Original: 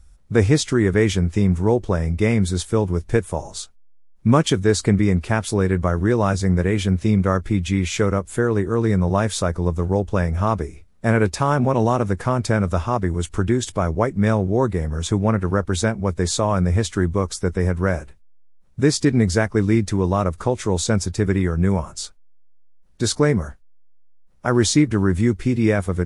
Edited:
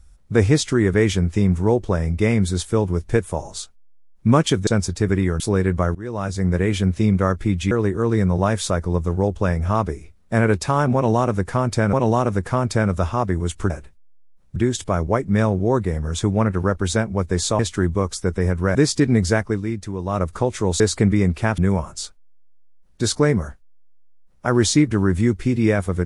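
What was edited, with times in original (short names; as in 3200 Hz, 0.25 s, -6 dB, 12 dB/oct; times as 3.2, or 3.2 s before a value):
4.67–5.45 swap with 20.85–21.58
6–6.64 fade in, from -20.5 dB
7.76–8.43 cut
11.67–12.65 loop, 2 plays
16.47–16.78 cut
17.94–18.8 move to 13.44
19.48–20.27 dip -8 dB, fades 0.18 s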